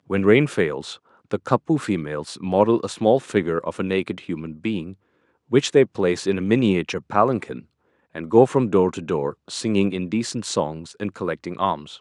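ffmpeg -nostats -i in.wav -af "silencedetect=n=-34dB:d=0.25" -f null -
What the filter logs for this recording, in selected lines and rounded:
silence_start: 0.96
silence_end: 1.31 | silence_duration: 0.36
silence_start: 4.93
silence_end: 5.52 | silence_duration: 0.59
silence_start: 7.60
silence_end: 8.15 | silence_duration: 0.56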